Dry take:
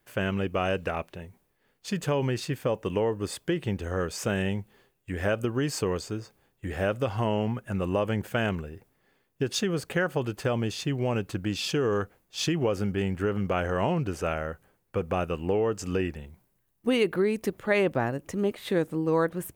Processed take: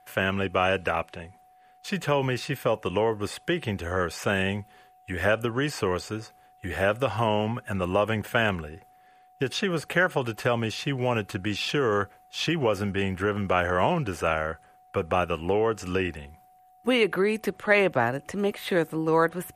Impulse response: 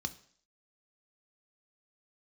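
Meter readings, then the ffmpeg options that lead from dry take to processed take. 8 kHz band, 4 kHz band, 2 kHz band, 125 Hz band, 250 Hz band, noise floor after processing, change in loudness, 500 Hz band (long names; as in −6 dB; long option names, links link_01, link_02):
−2.0 dB, +3.5 dB, +6.5 dB, −0.5 dB, 0.0 dB, −57 dBFS, +2.5 dB, +2.0 dB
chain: -filter_complex "[0:a]acrossover=split=3800[link_01][link_02];[link_02]acompressor=threshold=-44dB:ratio=4:attack=1:release=60[link_03];[link_01][link_03]amix=inputs=2:normalize=0,highshelf=frequency=7800:gain=10,acrossover=split=280|610|3600[link_04][link_05][link_06][link_07];[link_06]acontrast=77[link_08];[link_04][link_05][link_08][link_07]amix=inputs=4:normalize=0,aeval=exprs='val(0)+0.002*sin(2*PI*740*n/s)':channel_layout=same" -ar 48000 -c:a libmp3lame -b:a 56k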